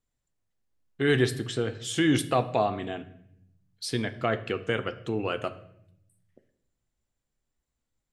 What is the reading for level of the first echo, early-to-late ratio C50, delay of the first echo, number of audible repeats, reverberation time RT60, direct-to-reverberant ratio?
no echo, 15.0 dB, no echo, no echo, 0.70 s, 10.0 dB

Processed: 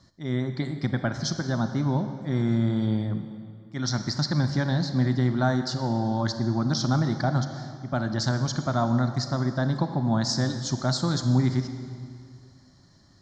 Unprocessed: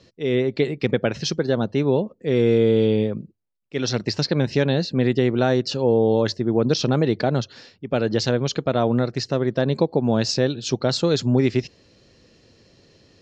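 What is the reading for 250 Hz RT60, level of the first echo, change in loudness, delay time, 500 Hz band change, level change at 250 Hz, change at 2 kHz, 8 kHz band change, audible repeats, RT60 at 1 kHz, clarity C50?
2.2 s, no echo, -5.0 dB, no echo, -13.0 dB, -3.5 dB, -4.0 dB, no reading, no echo, 2.2 s, 8.5 dB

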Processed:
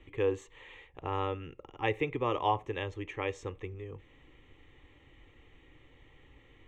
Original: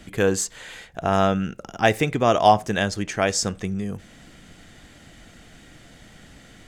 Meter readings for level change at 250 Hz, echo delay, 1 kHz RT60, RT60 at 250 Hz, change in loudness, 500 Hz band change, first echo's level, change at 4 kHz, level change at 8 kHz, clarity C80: -15.0 dB, no echo, no reverb, no reverb, -12.5 dB, -11.5 dB, no echo, -15.5 dB, -30.5 dB, no reverb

